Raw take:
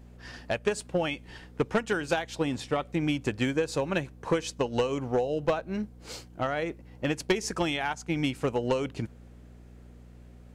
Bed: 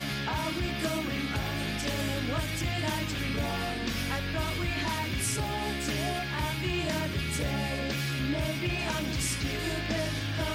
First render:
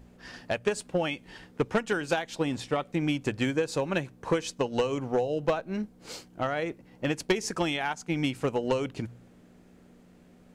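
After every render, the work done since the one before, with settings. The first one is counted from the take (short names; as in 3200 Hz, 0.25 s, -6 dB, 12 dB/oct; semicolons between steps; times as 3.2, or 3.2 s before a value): de-hum 60 Hz, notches 2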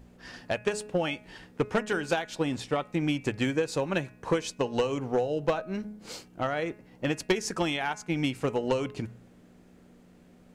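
de-hum 210.5 Hz, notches 13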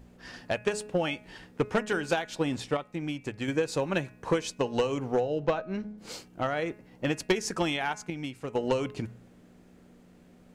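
2.77–3.48 gain -6 dB; 5.2–5.98 air absorption 81 m; 8.1–8.55 gain -8 dB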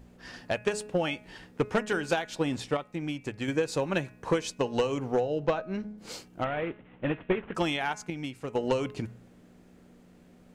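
6.44–7.55 CVSD 16 kbps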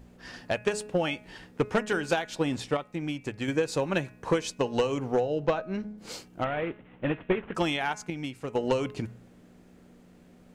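gain +1 dB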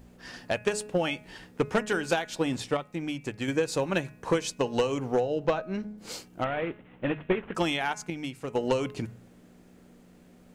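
high shelf 7300 Hz +5 dB; notches 50/100/150 Hz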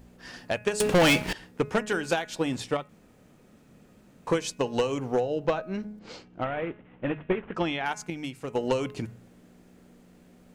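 0.8–1.33 sample leveller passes 5; 2.89–4.27 room tone; 5.99–7.86 air absorption 180 m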